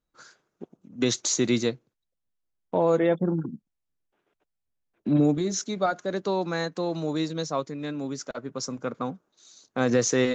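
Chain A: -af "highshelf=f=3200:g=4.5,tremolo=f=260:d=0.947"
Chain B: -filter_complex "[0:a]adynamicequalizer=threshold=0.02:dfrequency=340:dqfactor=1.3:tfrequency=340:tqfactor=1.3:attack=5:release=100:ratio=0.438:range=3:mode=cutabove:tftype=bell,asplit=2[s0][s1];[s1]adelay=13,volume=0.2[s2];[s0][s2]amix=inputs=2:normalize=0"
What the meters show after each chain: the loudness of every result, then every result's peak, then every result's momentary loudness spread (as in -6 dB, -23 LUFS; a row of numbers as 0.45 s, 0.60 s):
-30.5 LUFS, -27.5 LUFS; -11.5 dBFS, -11.5 dBFS; 12 LU, 12 LU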